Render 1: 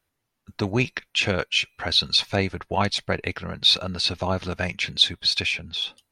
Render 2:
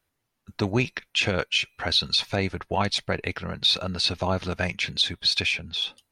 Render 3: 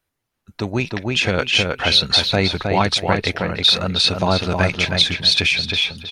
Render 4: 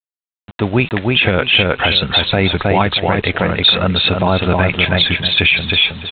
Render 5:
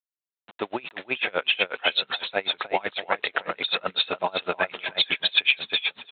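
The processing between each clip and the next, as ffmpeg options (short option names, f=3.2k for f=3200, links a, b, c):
-af "alimiter=limit=-11.5dB:level=0:latency=1:release=57"
-filter_complex "[0:a]asplit=2[a][b];[b]adelay=316,lowpass=f=3.3k:p=1,volume=-4dB,asplit=2[c][d];[d]adelay=316,lowpass=f=3.3k:p=1,volume=0.24,asplit=2[e][f];[f]adelay=316,lowpass=f=3.3k:p=1,volume=0.24[g];[c][e][g]amix=inputs=3:normalize=0[h];[a][h]amix=inputs=2:normalize=0,dynaudnorm=f=490:g=5:m=10dB"
-af "aresample=8000,acrusher=bits=6:mix=0:aa=0.000001,aresample=44100,alimiter=level_in=8dB:limit=-1dB:release=50:level=0:latency=1,volume=-1dB"
-af "highpass=510,aeval=exprs='val(0)*pow(10,-29*(0.5-0.5*cos(2*PI*8*n/s))/20)':c=same,volume=-3dB"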